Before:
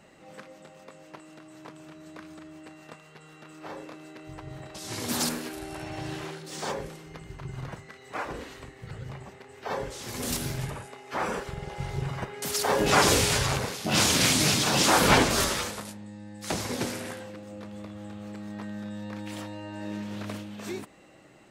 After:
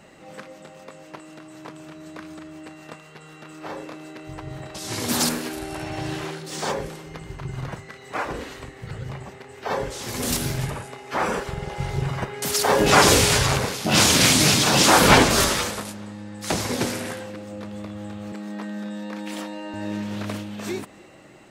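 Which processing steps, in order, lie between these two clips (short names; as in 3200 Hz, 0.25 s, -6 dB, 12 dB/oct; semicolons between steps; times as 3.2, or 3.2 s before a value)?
18.32–19.74 steep high-pass 180 Hz 36 dB/oct; on a send: tape echo 0.3 s, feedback 54%, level -23 dB, low-pass 5000 Hz; on the sum: gain +6 dB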